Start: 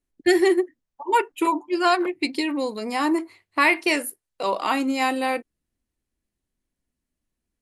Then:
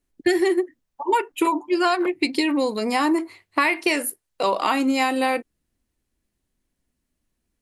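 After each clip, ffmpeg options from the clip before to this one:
-af "acompressor=threshold=0.0794:ratio=6,volume=1.88"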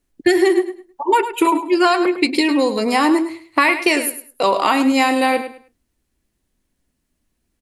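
-af "aecho=1:1:104|208|312:0.282|0.0648|0.0149,volume=1.78"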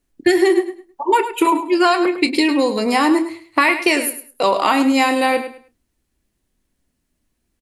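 -filter_complex "[0:a]asplit=2[s0][s1];[s1]adelay=29,volume=0.211[s2];[s0][s2]amix=inputs=2:normalize=0"

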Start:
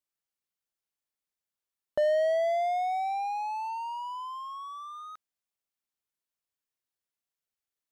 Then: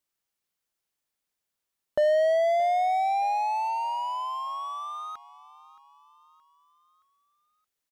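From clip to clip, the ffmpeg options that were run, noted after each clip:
-filter_complex "[0:a]asplit=2[s0][s1];[s1]alimiter=level_in=1.41:limit=0.0631:level=0:latency=1,volume=0.708,volume=1[s2];[s0][s2]amix=inputs=2:normalize=0,aecho=1:1:622|1244|1866|2488:0.112|0.055|0.0269|0.0132"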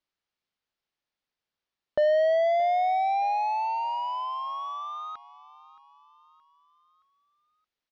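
-af "lowpass=f=5000:w=0.5412,lowpass=f=5000:w=1.3066"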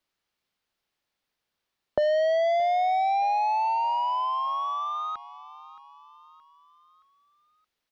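-filter_complex "[0:a]acrossover=split=150|3000[s0][s1][s2];[s1]acompressor=threshold=0.0398:ratio=6[s3];[s0][s3][s2]amix=inputs=3:normalize=0,acrossover=split=1300[s4][s5];[s5]alimiter=level_in=6.68:limit=0.0631:level=0:latency=1:release=39,volume=0.15[s6];[s4][s6]amix=inputs=2:normalize=0,volume=2"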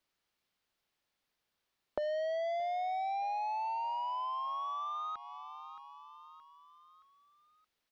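-af "acompressor=threshold=0.01:ratio=2,volume=0.841"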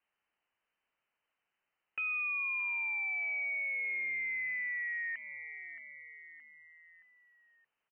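-af "aresample=16000,asoftclip=type=hard:threshold=0.0188,aresample=44100,lowpass=f=2600:t=q:w=0.5098,lowpass=f=2600:t=q:w=0.6013,lowpass=f=2600:t=q:w=0.9,lowpass=f=2600:t=q:w=2.563,afreqshift=-3100,volume=1.19"

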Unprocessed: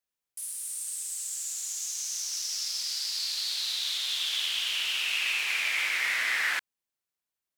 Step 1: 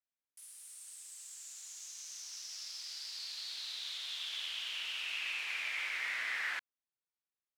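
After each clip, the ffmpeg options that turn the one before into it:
-af "lowpass=f=3400:p=1,lowshelf=f=490:g=-4,volume=0.422"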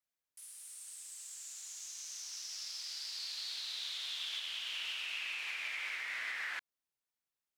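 -af "alimiter=level_in=2.37:limit=0.0631:level=0:latency=1:release=285,volume=0.422,volume=1.19"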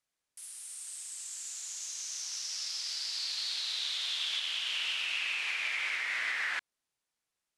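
-af "lowpass=f=11000:w=0.5412,lowpass=f=11000:w=1.3066,volume=2.11"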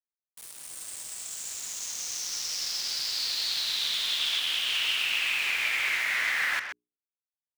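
-filter_complex "[0:a]aeval=exprs='val(0)*gte(abs(val(0)),0.00891)':c=same,bandreject=f=60:t=h:w=6,bandreject=f=120:t=h:w=6,bandreject=f=180:t=h:w=6,bandreject=f=240:t=h:w=6,bandreject=f=300:t=h:w=6,bandreject=f=360:t=h:w=6,bandreject=f=420:t=h:w=6,asplit=2[s0][s1];[s1]adelay=130,highpass=300,lowpass=3400,asoftclip=type=hard:threshold=0.0251,volume=0.501[s2];[s0][s2]amix=inputs=2:normalize=0,volume=1.88"

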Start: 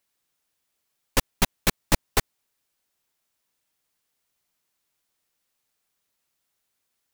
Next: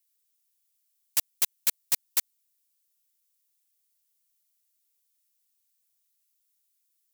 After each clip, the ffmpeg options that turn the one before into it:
-af "aderivative"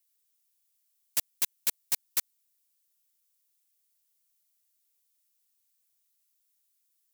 -af "asoftclip=type=tanh:threshold=0.119"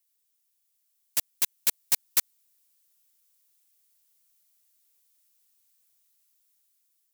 -af "dynaudnorm=f=640:g=5:m=2"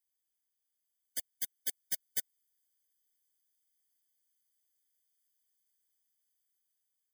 -af "afftfilt=real='re*eq(mod(floor(b*sr/1024/740),2),0)':imag='im*eq(mod(floor(b*sr/1024/740),2),0)':win_size=1024:overlap=0.75,volume=0.398"

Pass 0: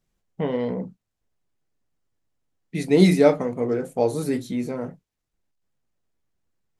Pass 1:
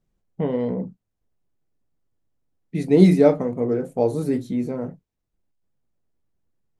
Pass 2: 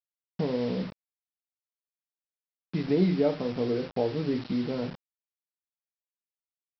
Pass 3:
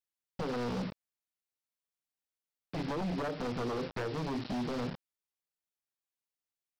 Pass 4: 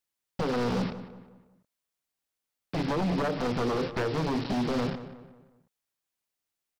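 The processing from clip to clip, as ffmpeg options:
-af "tiltshelf=f=970:g=5,volume=0.794"
-af "acompressor=threshold=0.0355:ratio=2,aresample=11025,acrusher=bits=6:mix=0:aa=0.000001,aresample=44100"
-af "acompressor=threshold=0.0447:ratio=6,aeval=exprs='0.0335*(abs(mod(val(0)/0.0335+3,4)-2)-1)':c=same"
-filter_complex "[0:a]asplit=2[s0][s1];[s1]adelay=181,lowpass=f=2500:p=1,volume=0.237,asplit=2[s2][s3];[s3]adelay=181,lowpass=f=2500:p=1,volume=0.43,asplit=2[s4][s5];[s5]adelay=181,lowpass=f=2500:p=1,volume=0.43,asplit=2[s6][s7];[s7]adelay=181,lowpass=f=2500:p=1,volume=0.43[s8];[s0][s2][s4][s6][s8]amix=inputs=5:normalize=0,volume=2.11"

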